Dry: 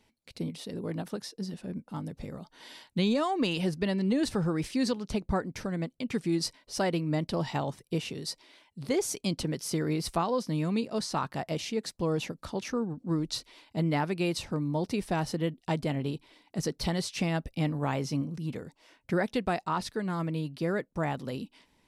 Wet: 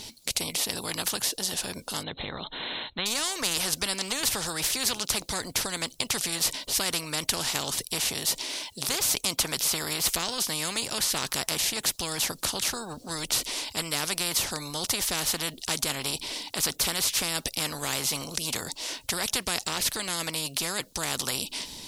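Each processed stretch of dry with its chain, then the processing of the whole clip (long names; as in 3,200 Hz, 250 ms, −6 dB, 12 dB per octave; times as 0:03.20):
0:02.03–0:03.06: linear-phase brick-wall low-pass 4,200 Hz + notch filter 2,600 Hz, Q 13
whole clip: high shelf with overshoot 2,900 Hz +12 dB, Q 1.5; every bin compressed towards the loudest bin 4 to 1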